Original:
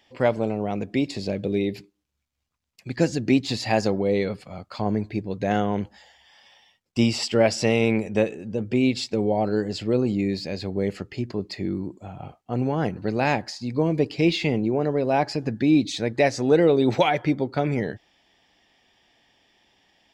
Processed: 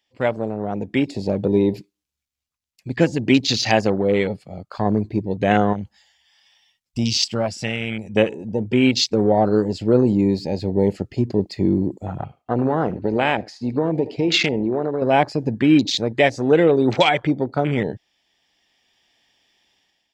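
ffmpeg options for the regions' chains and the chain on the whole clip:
ffmpeg -i in.wav -filter_complex "[0:a]asettb=1/sr,asplit=3[link_01][link_02][link_03];[link_01]atrim=end=5.734[link_04];[link_02]atrim=start=5.73:end=8.16,asetpts=PTS-STARTPTS,afade=type=in:duration=0.004:curve=qsin,afade=type=out:start_time=2.426:duration=0.004:curve=qsin,equalizer=frequency=410:width_type=o:width=1.3:gain=-10,acompressor=threshold=-36dB:ratio=1.5:attack=3.2:release=140:knee=1:detection=peak[link_05];[link_03]atrim=start=8.156[link_06];[link_04][link_05]acrossfade=duration=0.004:curve1=hsin:curve2=qsin[link_07];[link_07][link_06]acrossfade=duration=0.004:curve1=qsin:curve2=hsin,asettb=1/sr,asplit=3[link_08][link_09][link_10];[link_08]atrim=end=12.234[link_11];[link_09]atrim=start=12.23:end=15.02,asetpts=PTS-STARTPTS,afade=type=in:duration=0.004:curve=qsin,afade=type=out:start_time=2.786:duration=0.004:curve=qsin,bass=frequency=250:gain=-6,treble=frequency=4000:gain=-10,acompressor=threshold=-24dB:ratio=4:attack=3.2:release=140:knee=1:detection=peak,aecho=1:1:78:0.168,atrim=end_sample=123039[link_12];[link_10]atrim=start=15.016[link_13];[link_11][link_12]acrossfade=duration=0.004:curve1=hsin:curve2=qsin[link_14];[link_14][link_13]acrossfade=duration=0.004:curve1=qsin:curve2=hsin,afwtdn=0.02,highshelf=frequency=2300:gain=10,dynaudnorm=framelen=520:gausssize=3:maxgain=11.5dB,volume=-1dB" out.wav

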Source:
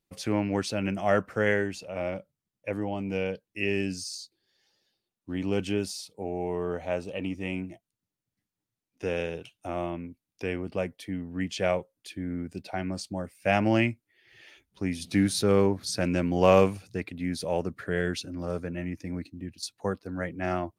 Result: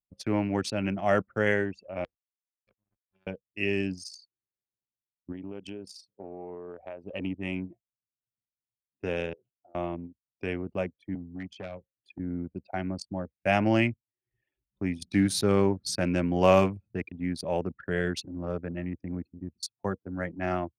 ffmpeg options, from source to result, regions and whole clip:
ffmpeg -i in.wav -filter_complex "[0:a]asettb=1/sr,asplit=3[link_01][link_02][link_03];[link_01]atrim=end=2.044[link_04];[link_02]atrim=start=2.04:end=3.27,asetpts=PTS-STARTPTS,afade=type=in:duration=0.004:curve=qsin,afade=type=out:start_time=1.226:duration=0.004:curve=qsin,aecho=1:1:2.2:0.85,atrim=end_sample=54243,acompressor=threshold=-35dB:ratio=2:attack=3.2:release=140:knee=1:detection=peak,acrusher=bits=3:mix=0:aa=0.5[link_05];[link_03]atrim=start=3.266[link_06];[link_04][link_05]acrossfade=duration=0.004:curve1=hsin:curve2=qsin[link_07];[link_07][link_06]acrossfade=duration=0.004:curve1=qsin:curve2=hsin,asettb=1/sr,asplit=3[link_08][link_09][link_10];[link_08]atrim=end=5.324[link_11];[link_09]atrim=start=5.32:end=7.04,asetpts=PTS-STARTPTS,afade=type=in:duration=0.004:curve=qsin,afade=type=out:start_time=1.716:duration=0.004:curve=qsin,lowshelf=frequency=190:gain=-7,acompressor=threshold=-33dB:ratio=6:attack=3.2:release=140:knee=1:detection=peak[link_12];[link_10]atrim=start=7.036[link_13];[link_11][link_12]acrossfade=duration=0.004:curve1=hsin:curve2=qsin[link_14];[link_14][link_13]acrossfade=duration=0.004:curve1=qsin:curve2=hsin,asettb=1/sr,asplit=3[link_15][link_16][link_17];[link_15]atrim=end=9.334[link_18];[link_16]atrim=start=9.33:end=9.75,asetpts=PTS-STARTPTS,afade=type=in:duration=0.004:curve=qsin,afade=type=out:start_time=0.416:duration=0.004:curve=qsin,bandpass=frequency=530:width_type=q:width=0.68,acompressor=threshold=-49dB:ratio=2:attack=3.2:release=140:knee=1:detection=peak[link_19];[link_17]atrim=start=9.746[link_20];[link_18][link_19]acrossfade=duration=0.004:curve1=hsin:curve2=qsin[link_21];[link_21][link_20]acrossfade=duration=0.004:curve1=qsin:curve2=hsin,asettb=1/sr,asplit=3[link_22][link_23][link_24];[link_22]atrim=end=11.154[link_25];[link_23]atrim=start=11.15:end=12.19,asetpts=PTS-STARTPTS,afade=type=in:duration=0.004:curve=qsin,afade=type=out:start_time=1.036:duration=0.004:curve=qsin,acrossover=split=150|2300[link_26][link_27][link_28];[link_26]acompressor=threshold=-42dB:ratio=4[link_29];[link_27]acompressor=threshold=-36dB:ratio=4[link_30];[link_28]acompressor=threshold=-40dB:ratio=4[link_31];[link_29][link_30][link_31]amix=inputs=3:normalize=0,volume=31.5dB,asoftclip=hard,volume=-31.5dB[link_32];[link_24]atrim=start=12.186[link_33];[link_25][link_32]acrossfade=duration=0.004:curve1=hsin:curve2=qsin[link_34];[link_34][link_33]acrossfade=duration=0.004:curve1=qsin:curve2=hsin,anlmdn=3.98,highpass=51,bandreject=frequency=480:width=12" out.wav

